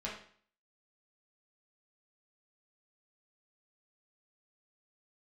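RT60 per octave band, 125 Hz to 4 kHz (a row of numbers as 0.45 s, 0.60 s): 0.55 s, 0.50 s, 0.50 s, 0.50 s, 0.50 s, 0.50 s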